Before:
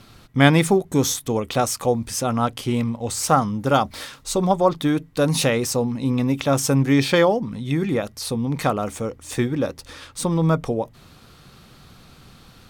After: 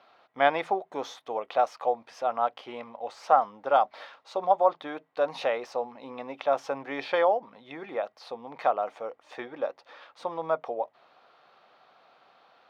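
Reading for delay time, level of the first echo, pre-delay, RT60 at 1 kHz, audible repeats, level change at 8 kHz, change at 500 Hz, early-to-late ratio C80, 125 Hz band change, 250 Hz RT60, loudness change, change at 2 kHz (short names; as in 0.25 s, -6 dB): none, none, none, none, none, under -25 dB, -5.5 dB, none, under -30 dB, none, -7.5 dB, -8.5 dB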